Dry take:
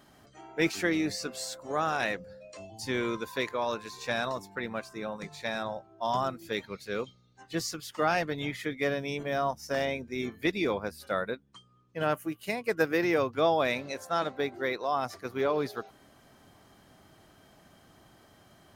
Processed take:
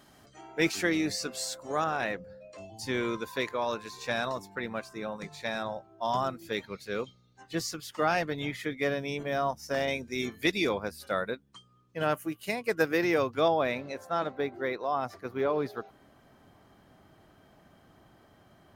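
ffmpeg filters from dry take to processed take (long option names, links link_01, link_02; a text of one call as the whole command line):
ffmpeg -i in.wav -af "asetnsamples=nb_out_samples=441:pad=0,asendcmd='1.84 equalizer g -8.5;2.58 equalizer g -0.5;9.88 equalizer g 9;10.69 equalizer g 2;13.48 equalizer g -9',equalizer=frequency=8300:width_type=o:width=2.6:gain=3" out.wav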